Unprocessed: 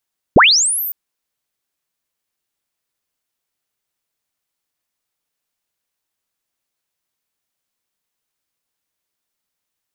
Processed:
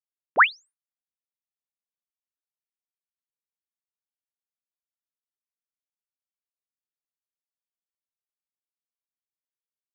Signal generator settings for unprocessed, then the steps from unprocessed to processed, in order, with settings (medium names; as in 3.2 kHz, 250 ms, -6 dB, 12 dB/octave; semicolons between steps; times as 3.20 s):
sweep linear 76 Hz -> 15 kHz -3.5 dBFS -> -21.5 dBFS 0.56 s
low-pass 1.8 kHz 24 dB/octave; expander -41 dBFS; high-pass 1.4 kHz 12 dB/octave